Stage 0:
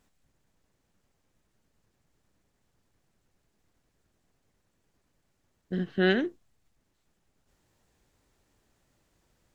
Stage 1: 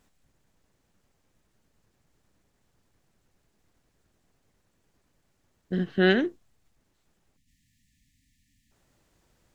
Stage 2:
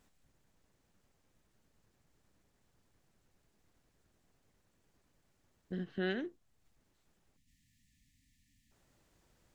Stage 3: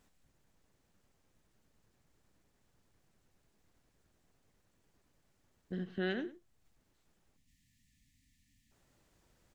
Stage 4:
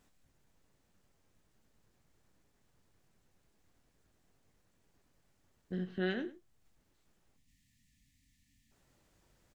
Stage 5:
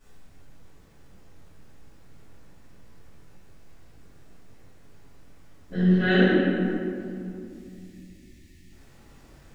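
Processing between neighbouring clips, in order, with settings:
spectral delete 7.37–8.71, 280–1700 Hz; gain +3 dB
compressor 1.5:1, threshold -48 dBFS, peak gain reduction 11.5 dB; gain -3.5 dB
echo 0.104 s -16.5 dB
doubler 22 ms -11 dB
reverb RT60 2.5 s, pre-delay 3 ms, DRR -17 dB

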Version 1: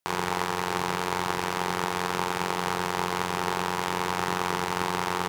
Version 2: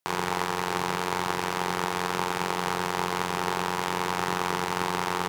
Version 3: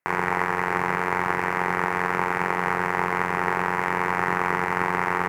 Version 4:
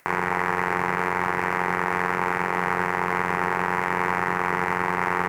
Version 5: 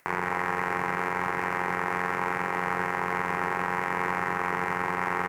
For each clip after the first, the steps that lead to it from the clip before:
HPF 76 Hz
resonant high shelf 2700 Hz -10 dB, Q 3; gain +2.5 dB
upward compressor, threshold -42 dBFS; maximiser +9.5 dB; gain -8 dB
echo 0.174 s -10 dB; gain -4.5 dB

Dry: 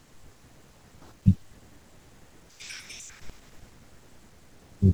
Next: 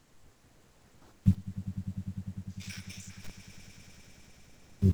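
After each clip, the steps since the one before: in parallel at -7.5 dB: bit-crush 6-bit; on the sum: swelling echo 0.1 s, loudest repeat 5, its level -15 dB; gain -7.5 dB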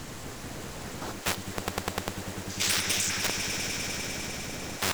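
in parallel at -4 dB: Schmitt trigger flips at -27.5 dBFS; on the sum: spectral compressor 10:1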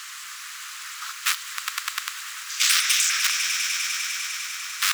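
elliptic high-pass 1200 Hz, stop band 50 dB; gain +8 dB

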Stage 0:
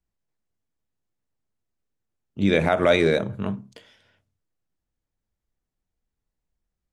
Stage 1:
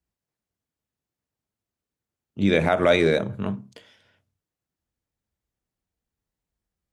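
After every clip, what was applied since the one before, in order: HPF 49 Hz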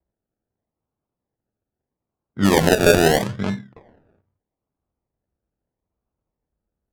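decimation with a swept rate 33×, swing 60% 0.78 Hz; low-pass opened by the level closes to 1400 Hz, open at -17 dBFS; gain +4 dB

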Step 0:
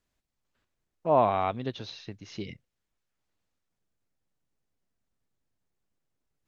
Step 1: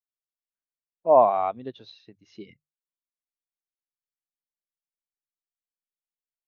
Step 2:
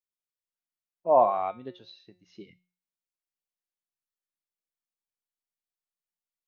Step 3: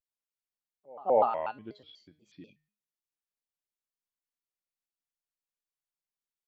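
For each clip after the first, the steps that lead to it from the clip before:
low shelf 180 Hz -11 dB; notches 50/100/150 Hz; spectral expander 1.5:1; gain +7 dB
resonator 180 Hz, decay 0.41 s, harmonics all, mix 70%; gain +5 dB
dynamic EQ 2800 Hz, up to +8 dB, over -48 dBFS, Q 1.7; reverse echo 0.206 s -24 dB; shaped vibrato square 4.1 Hz, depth 250 cents; gain -4.5 dB

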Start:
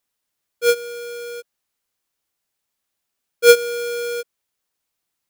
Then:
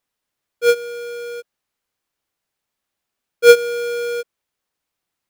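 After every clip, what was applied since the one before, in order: high shelf 4200 Hz -7.5 dB; gain +2.5 dB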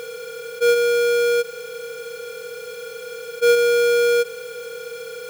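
per-bin compression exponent 0.2; gain -9 dB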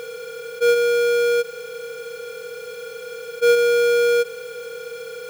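bell 15000 Hz -3 dB 2.1 oct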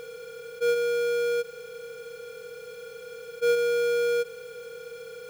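low shelf 230 Hz +8 dB; gain -9 dB

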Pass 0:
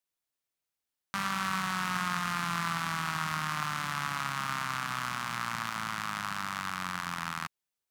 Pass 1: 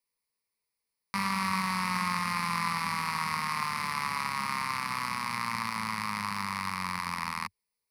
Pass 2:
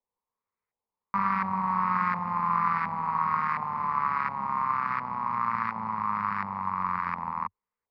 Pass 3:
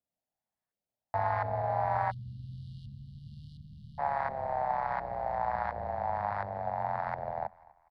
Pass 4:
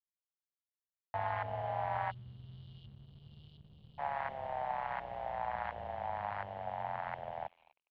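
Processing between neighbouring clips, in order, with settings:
ripple EQ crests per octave 0.89, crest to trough 13 dB
LFO low-pass saw up 1.4 Hz 740–1600 Hz
frequency-shifting echo 0.246 s, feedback 39%, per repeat +40 Hz, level -23 dB; spectral delete 2.11–3.99, 390–3100 Hz; frequency shift -300 Hz; gain -3.5 dB
crossover distortion -58 dBFS; synth low-pass 3000 Hz, resonance Q 5.1; gain -6.5 dB

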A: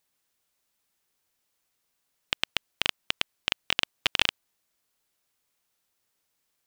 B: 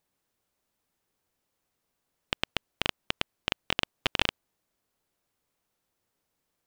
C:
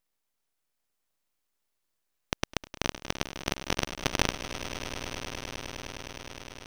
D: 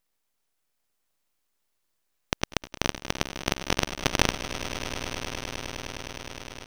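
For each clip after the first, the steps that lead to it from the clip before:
tilt shelf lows +5.5 dB, about 1200 Hz
swelling echo 0.103 s, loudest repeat 8, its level -15 dB; full-wave rectifier
echo 87 ms -24 dB; gain +3.5 dB

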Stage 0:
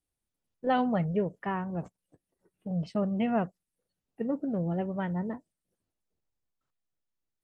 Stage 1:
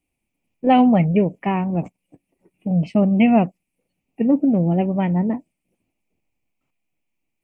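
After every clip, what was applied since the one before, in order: EQ curve 100 Hz 0 dB, 280 Hz +8 dB, 440 Hz 0 dB, 780 Hz +4 dB, 1600 Hz -10 dB, 2400 Hz +14 dB, 3700 Hz -8 dB, 7600 Hz -3 dB; gain +8 dB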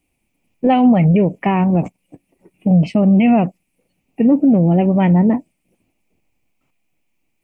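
limiter -14.5 dBFS, peak gain reduction 10 dB; gain +8.5 dB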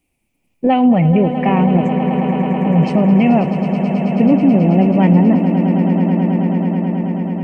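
swelling echo 0.108 s, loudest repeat 8, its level -12 dB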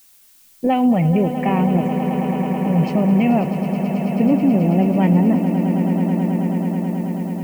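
added noise blue -47 dBFS; gain -4 dB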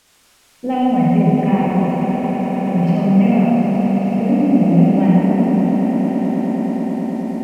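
reverb RT60 3.4 s, pre-delay 36 ms, DRR -6 dB; decimation joined by straight lines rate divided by 2×; gain -6 dB

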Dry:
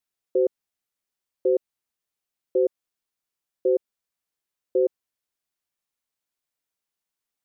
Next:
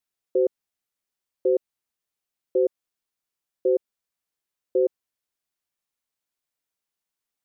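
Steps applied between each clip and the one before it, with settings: nothing audible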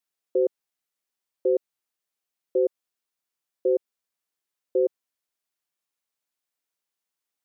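low shelf 140 Hz -10 dB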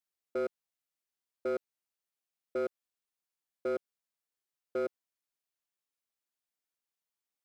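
hard clip -22 dBFS, distortion -10 dB; gain -6.5 dB

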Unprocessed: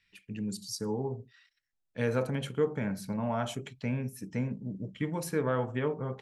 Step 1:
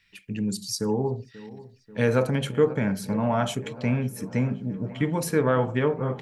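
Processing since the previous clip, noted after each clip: dark delay 0.537 s, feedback 70%, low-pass 2300 Hz, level -18 dB; gain +7.5 dB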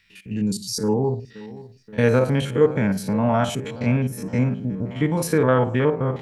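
stepped spectrum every 50 ms; gain +5 dB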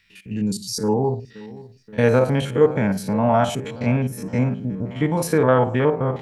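dynamic EQ 750 Hz, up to +5 dB, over -35 dBFS, Q 1.6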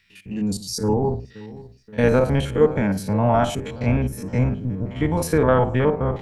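octaver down 1 oct, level -5 dB; gain -1 dB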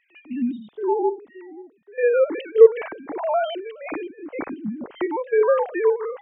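sine-wave speech; gain -1 dB

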